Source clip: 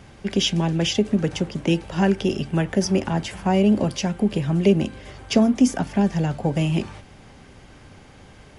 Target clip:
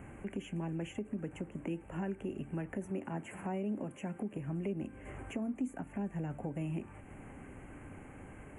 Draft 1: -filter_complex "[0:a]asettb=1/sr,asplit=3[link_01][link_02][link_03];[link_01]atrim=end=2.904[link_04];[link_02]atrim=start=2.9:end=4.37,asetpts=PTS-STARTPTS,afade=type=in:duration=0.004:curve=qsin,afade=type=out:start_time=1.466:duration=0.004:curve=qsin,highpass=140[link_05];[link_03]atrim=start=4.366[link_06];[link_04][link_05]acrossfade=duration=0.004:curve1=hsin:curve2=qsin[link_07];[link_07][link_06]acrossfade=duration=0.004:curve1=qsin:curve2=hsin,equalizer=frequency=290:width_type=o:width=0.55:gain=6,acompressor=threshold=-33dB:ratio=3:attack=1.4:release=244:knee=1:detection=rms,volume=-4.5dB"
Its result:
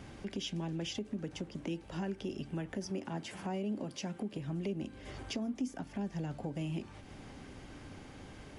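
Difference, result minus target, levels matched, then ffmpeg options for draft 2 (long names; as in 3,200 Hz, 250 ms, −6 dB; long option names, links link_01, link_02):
4,000 Hz band +12.5 dB
-filter_complex "[0:a]asettb=1/sr,asplit=3[link_01][link_02][link_03];[link_01]atrim=end=2.904[link_04];[link_02]atrim=start=2.9:end=4.37,asetpts=PTS-STARTPTS,afade=type=in:duration=0.004:curve=qsin,afade=type=out:start_time=1.466:duration=0.004:curve=qsin,highpass=140[link_05];[link_03]atrim=start=4.366[link_06];[link_04][link_05]acrossfade=duration=0.004:curve1=hsin:curve2=qsin[link_07];[link_07][link_06]acrossfade=duration=0.004:curve1=qsin:curve2=hsin,equalizer=frequency=290:width_type=o:width=0.55:gain=6,acompressor=threshold=-33dB:ratio=3:attack=1.4:release=244:knee=1:detection=rms,asuperstop=centerf=4500:order=8:qfactor=0.94,volume=-4.5dB"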